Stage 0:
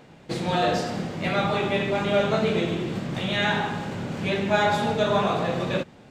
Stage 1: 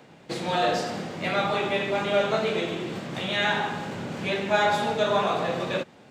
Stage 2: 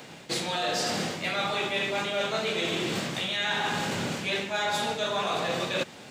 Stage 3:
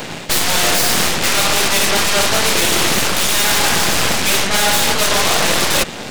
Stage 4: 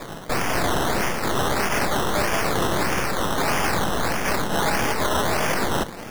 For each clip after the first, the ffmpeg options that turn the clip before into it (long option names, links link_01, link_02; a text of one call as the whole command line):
ffmpeg -i in.wav -filter_complex "[0:a]highpass=frequency=160:poles=1,acrossover=split=360|600|1500[link_01][link_02][link_03][link_04];[link_01]alimiter=level_in=3.5dB:limit=-24dB:level=0:latency=1:release=443,volume=-3.5dB[link_05];[link_05][link_02][link_03][link_04]amix=inputs=4:normalize=0" out.wav
ffmpeg -i in.wav -af "highshelf=frequency=2300:gain=12,areverse,acompressor=threshold=-29dB:ratio=10,areverse,volume=3.5dB" out.wav
ffmpeg -i in.wav -af "aeval=exprs='0.178*(cos(1*acos(clip(val(0)/0.178,-1,1)))-cos(1*PI/2))+0.0708*(cos(8*acos(clip(val(0)/0.178,-1,1)))-cos(8*PI/2))':channel_layout=same,aeval=exprs='0.316*sin(PI/2*4.47*val(0)/0.316)':channel_layout=same" out.wav
ffmpeg -i in.wav -af "flanger=delay=5.8:depth=3.9:regen=-78:speed=0.51:shape=sinusoidal,acrusher=samples=15:mix=1:aa=0.000001:lfo=1:lforange=9:lforate=1.6,volume=-3dB" out.wav